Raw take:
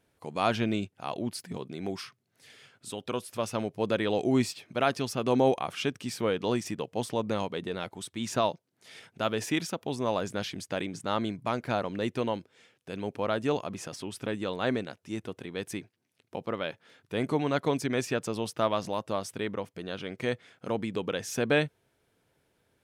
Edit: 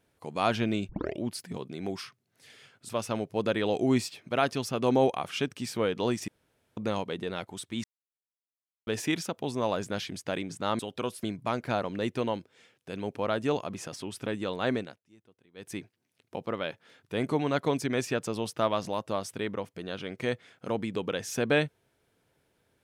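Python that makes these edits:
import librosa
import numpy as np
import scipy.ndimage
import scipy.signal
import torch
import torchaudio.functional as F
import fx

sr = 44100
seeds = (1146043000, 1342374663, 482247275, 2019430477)

y = fx.edit(x, sr, fx.tape_start(start_s=0.89, length_s=0.32),
    fx.move(start_s=2.89, length_s=0.44, to_s=11.23),
    fx.room_tone_fill(start_s=6.72, length_s=0.49),
    fx.silence(start_s=8.28, length_s=1.03),
    fx.fade_down_up(start_s=14.78, length_s=1.01, db=-23.5, fade_s=0.26), tone=tone)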